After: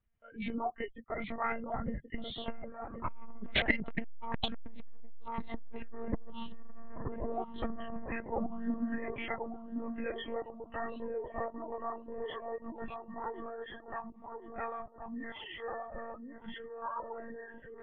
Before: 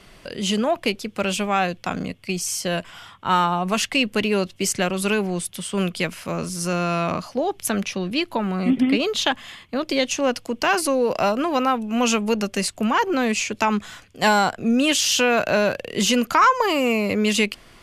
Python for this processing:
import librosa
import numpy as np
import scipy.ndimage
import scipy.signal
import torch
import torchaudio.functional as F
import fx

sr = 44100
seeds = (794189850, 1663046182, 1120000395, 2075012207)

y = fx.freq_compress(x, sr, knee_hz=1000.0, ratio=1.5)
y = fx.doppler_pass(y, sr, speed_mps=22, closest_m=4.1, pass_at_s=4.11)
y = fx.noise_reduce_blind(y, sr, reduce_db=23)
y = scipy.signal.sosfilt(scipy.signal.butter(2, 2800.0, 'lowpass', fs=sr, output='sos'), y)
y = fx.dereverb_blind(y, sr, rt60_s=0.61)
y = fx.low_shelf_res(y, sr, hz=190.0, db=10.0, q=1.5)
y = fx.rider(y, sr, range_db=4, speed_s=0.5)
y = fx.echo_wet_bandpass(y, sr, ms=1070, feedback_pct=40, hz=490.0, wet_db=-3.5)
y = fx.lpc_monotone(y, sr, seeds[0], pitch_hz=230.0, order=16)
y = fx.transformer_sat(y, sr, knee_hz=320.0)
y = y * 10.0 ** (11.0 / 20.0)